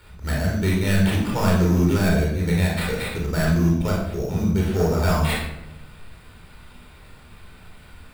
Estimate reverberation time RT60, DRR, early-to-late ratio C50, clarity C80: 0.85 s, -3.0 dB, 2.0 dB, 5.5 dB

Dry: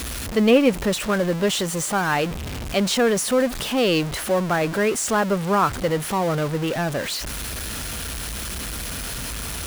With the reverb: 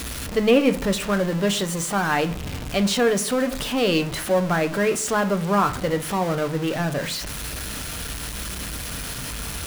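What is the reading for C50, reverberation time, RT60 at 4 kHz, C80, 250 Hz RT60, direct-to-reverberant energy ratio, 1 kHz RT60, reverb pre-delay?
15.0 dB, 0.50 s, 0.30 s, 20.0 dB, 0.75 s, 7.5 dB, 0.40 s, 7 ms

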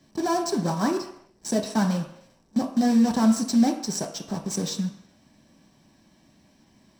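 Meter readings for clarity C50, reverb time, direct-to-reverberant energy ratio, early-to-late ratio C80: 9.0 dB, not exponential, 1.5 dB, 11.0 dB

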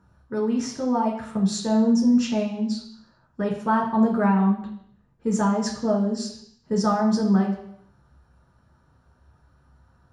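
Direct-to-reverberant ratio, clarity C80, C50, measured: -1.5 dB, 10.0 dB, 6.5 dB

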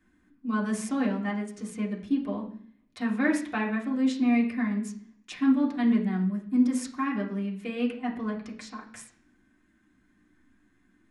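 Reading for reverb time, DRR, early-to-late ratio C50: 0.55 s, -3.5 dB, 10.0 dB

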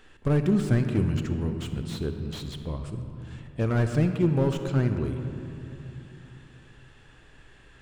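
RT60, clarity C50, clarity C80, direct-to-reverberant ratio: 3.0 s, 7.5 dB, 8.0 dB, 7.0 dB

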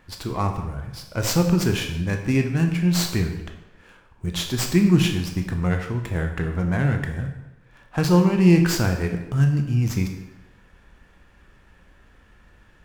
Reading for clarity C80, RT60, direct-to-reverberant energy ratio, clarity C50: 9.5 dB, 0.95 s, 4.0 dB, 7.0 dB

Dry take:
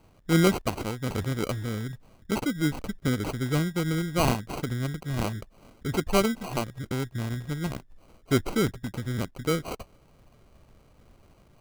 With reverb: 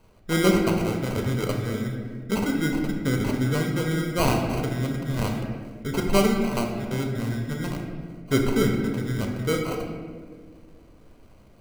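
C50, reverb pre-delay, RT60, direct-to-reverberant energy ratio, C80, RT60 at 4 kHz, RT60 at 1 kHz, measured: 3.5 dB, 4 ms, 1.8 s, 1.0 dB, 5.0 dB, 1.0 s, 1.4 s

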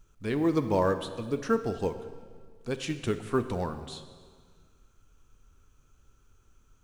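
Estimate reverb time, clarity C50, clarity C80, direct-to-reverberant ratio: 1.8 s, 10.5 dB, 12.0 dB, 9.0 dB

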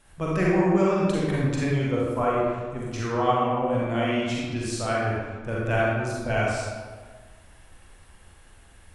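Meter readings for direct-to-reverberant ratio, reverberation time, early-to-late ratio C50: -5.5 dB, 1.5 s, -3.5 dB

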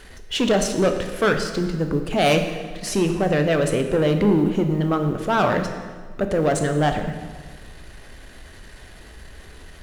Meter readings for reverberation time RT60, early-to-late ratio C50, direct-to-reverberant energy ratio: 1.6 s, 7.5 dB, 5.0 dB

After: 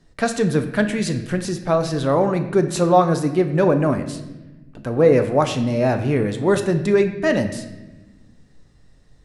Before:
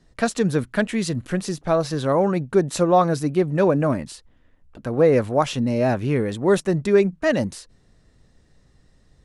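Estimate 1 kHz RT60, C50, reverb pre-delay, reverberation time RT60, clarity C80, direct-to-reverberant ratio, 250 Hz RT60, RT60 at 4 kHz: 1.0 s, 10.0 dB, 7 ms, 1.1 s, 12.0 dB, 7.0 dB, 1.9 s, 0.85 s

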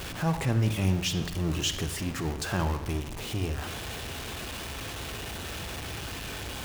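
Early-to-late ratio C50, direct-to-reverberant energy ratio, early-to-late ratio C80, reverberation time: 9.5 dB, 8.5 dB, 12.0 dB, 0.85 s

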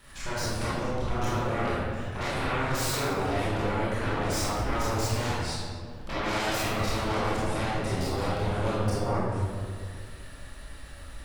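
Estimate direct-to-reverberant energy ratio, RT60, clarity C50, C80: -9.5 dB, 1.9 s, -3.5 dB, -1.0 dB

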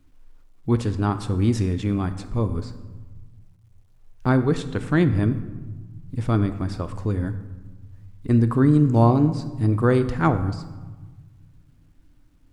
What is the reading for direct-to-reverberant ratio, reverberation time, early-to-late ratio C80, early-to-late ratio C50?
9.5 dB, 1.3 s, 14.0 dB, 12.5 dB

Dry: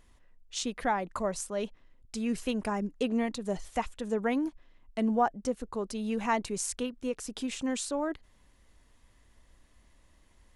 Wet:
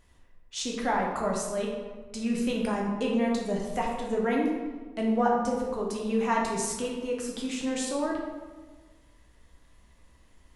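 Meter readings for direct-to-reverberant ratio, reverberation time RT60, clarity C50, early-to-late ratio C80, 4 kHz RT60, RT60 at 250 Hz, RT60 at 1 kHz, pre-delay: -2.0 dB, 1.4 s, 2.0 dB, 4.5 dB, 0.85 s, 1.5 s, 1.3 s, 8 ms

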